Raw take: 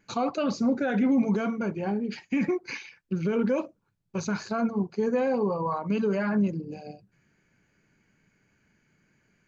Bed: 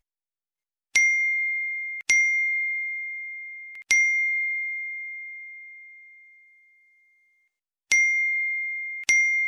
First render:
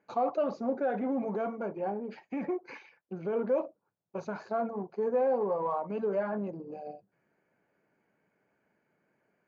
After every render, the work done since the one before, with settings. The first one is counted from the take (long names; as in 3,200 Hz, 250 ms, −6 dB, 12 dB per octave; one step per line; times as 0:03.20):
in parallel at −5.5 dB: soft clipping −33 dBFS, distortion −6 dB
on the sum: resonant band-pass 650 Hz, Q 1.6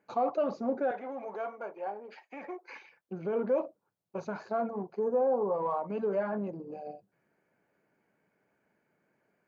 0:00.91–0:02.76: high-pass filter 600 Hz
0:04.99–0:05.54: flat-topped bell 2,800 Hz −14.5 dB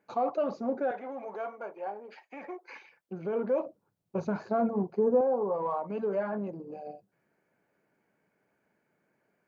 0:03.66–0:05.21: low-shelf EQ 360 Hz +11.5 dB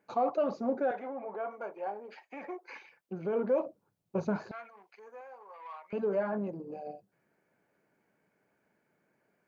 0:01.09–0:01.51: Gaussian smoothing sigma 2.9 samples
0:04.51–0:05.93: high-pass with resonance 2,200 Hz, resonance Q 2.5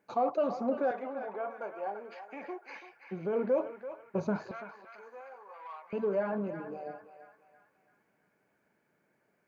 feedback echo with a band-pass in the loop 335 ms, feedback 52%, band-pass 1,700 Hz, level −7 dB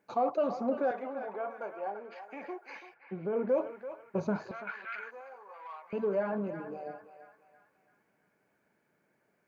0:01.76–0:02.16: high-frequency loss of the air 66 metres
0:02.94–0:03.49: high-frequency loss of the air 300 metres
0:04.67–0:05.11: flat-topped bell 2,200 Hz +15.5 dB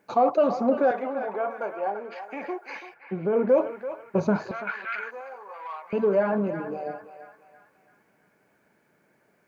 level +8.5 dB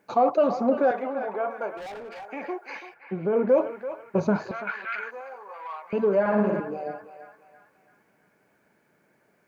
0:01.77–0:02.28: hard clipping −36 dBFS
0:06.20–0:06.60: flutter between parallel walls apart 9.8 metres, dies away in 1 s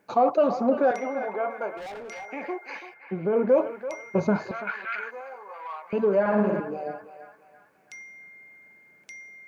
mix in bed −24 dB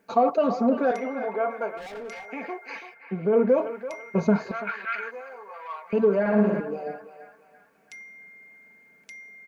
parametric band 870 Hz −2.5 dB 0.77 octaves
comb filter 4.4 ms, depth 54%